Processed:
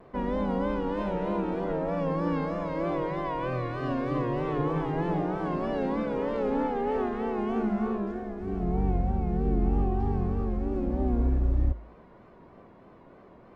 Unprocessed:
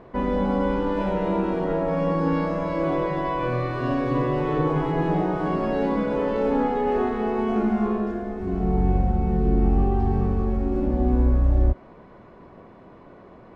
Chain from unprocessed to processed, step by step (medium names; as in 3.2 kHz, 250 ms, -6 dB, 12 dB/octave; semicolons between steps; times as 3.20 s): de-hum 55.79 Hz, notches 2; vibrato 3.2 Hz 78 cents; spectral replace 11.21–11.68 s, 330–1700 Hz both; trim -5.5 dB